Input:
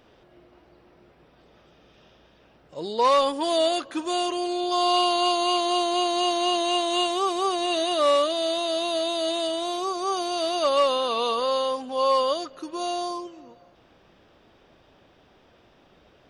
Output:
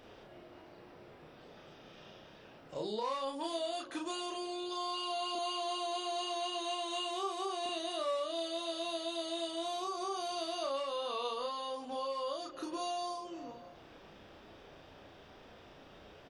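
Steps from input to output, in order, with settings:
mains-hum notches 60/120/180/240/300/360 Hz
0:05.35–0:07.66: high-pass filter 270 Hz 24 dB per octave
downward compressor 6 to 1, threshold −38 dBFS, peak gain reduction 19.5 dB
double-tracking delay 33 ms −2 dB

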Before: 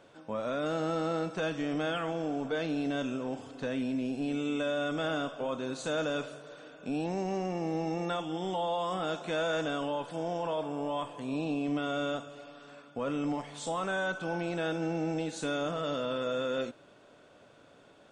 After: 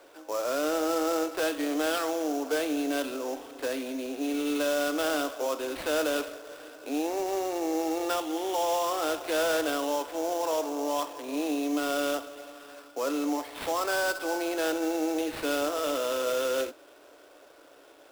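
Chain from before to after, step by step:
Butterworth high-pass 280 Hz 72 dB per octave
sample-rate reduction 6,500 Hz, jitter 20%
level +4.5 dB

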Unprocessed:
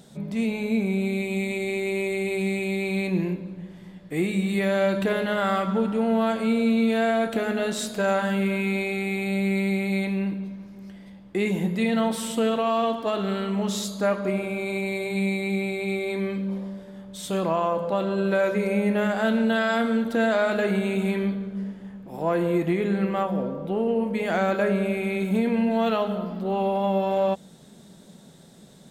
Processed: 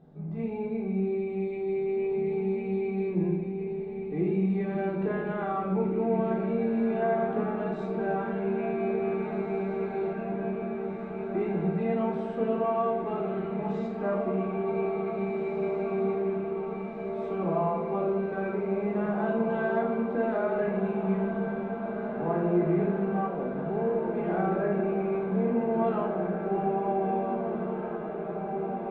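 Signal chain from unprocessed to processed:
low-pass filter 1,100 Hz 12 dB per octave
feedback delay with all-pass diffusion 1,854 ms, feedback 76%, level −7 dB
rectangular room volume 720 cubic metres, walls furnished, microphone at 3.7 metres
level −9 dB

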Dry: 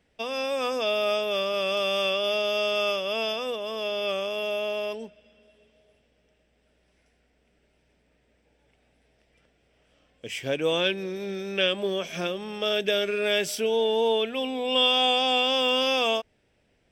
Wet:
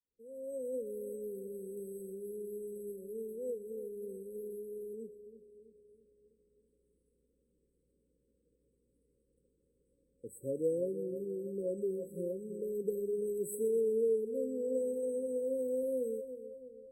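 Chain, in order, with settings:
fade in at the beginning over 0.89 s
parametric band 100 Hz −4.5 dB 2.5 octaves
echo with a time of its own for lows and highs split 790 Hz, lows 328 ms, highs 125 ms, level −12 dB
brick-wall band-stop 550–7,800 Hz
level −5.5 dB

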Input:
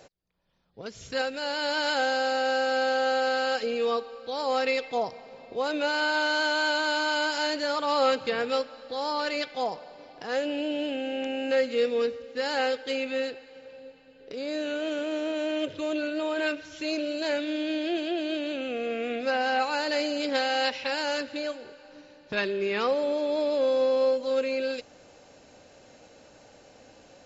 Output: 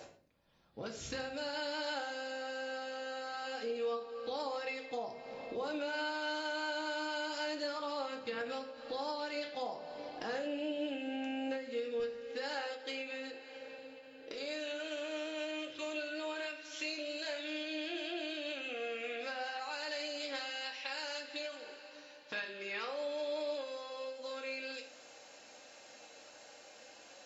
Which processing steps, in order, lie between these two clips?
high-pass filter 63 Hz 6 dB per octave, from 0:12.00 460 Hz, from 0:14.34 1,400 Hz
downward compressor 4 to 1, threshold −42 dBFS, peak gain reduction 19 dB
convolution reverb RT60 0.50 s, pre-delay 4 ms, DRR 1 dB
every ending faded ahead of time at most 110 dB per second
level +1 dB

